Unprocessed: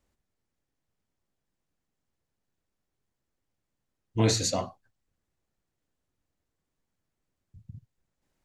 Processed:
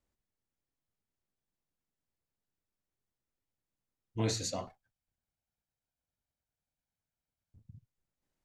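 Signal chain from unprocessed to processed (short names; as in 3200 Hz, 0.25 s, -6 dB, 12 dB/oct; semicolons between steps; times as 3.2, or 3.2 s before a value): 4.67–7.66 minimum comb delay 1.3 ms; gain -8.5 dB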